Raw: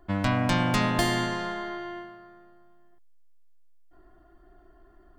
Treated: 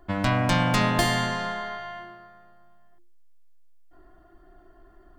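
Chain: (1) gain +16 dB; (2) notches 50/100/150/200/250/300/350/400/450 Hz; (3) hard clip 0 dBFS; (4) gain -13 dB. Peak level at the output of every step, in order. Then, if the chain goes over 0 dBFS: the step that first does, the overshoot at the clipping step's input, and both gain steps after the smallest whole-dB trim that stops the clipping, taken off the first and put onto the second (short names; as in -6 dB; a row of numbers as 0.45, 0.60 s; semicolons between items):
+5.0, +4.0, 0.0, -13.0 dBFS; step 1, 4.0 dB; step 1 +12 dB, step 4 -9 dB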